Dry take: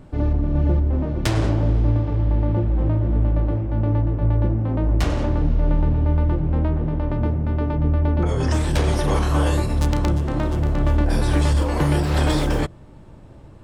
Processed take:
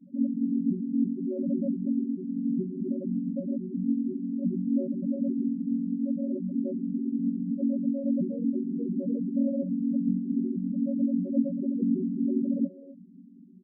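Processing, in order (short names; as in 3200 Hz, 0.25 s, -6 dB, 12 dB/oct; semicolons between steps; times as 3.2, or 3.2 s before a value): chord vocoder major triad, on F#3; speakerphone echo 0.26 s, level -17 dB; loudest bins only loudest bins 4; gain -2 dB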